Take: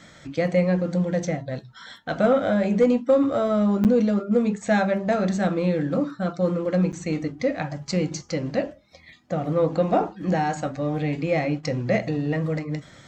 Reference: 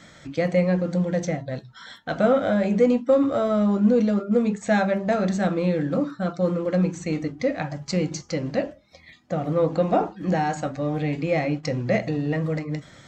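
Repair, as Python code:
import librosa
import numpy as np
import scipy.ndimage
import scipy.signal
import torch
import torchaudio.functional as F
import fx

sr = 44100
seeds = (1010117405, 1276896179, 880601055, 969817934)

y = fx.fix_declip(x, sr, threshold_db=-10.5)
y = fx.fix_interpolate(y, sr, at_s=(3.84, 6.92), length_ms=8.6)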